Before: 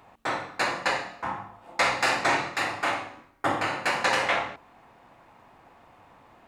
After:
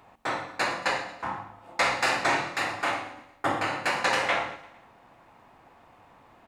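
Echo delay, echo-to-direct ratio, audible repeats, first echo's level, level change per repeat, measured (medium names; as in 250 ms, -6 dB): 114 ms, -16.0 dB, 3, -17.5 dB, -6.0 dB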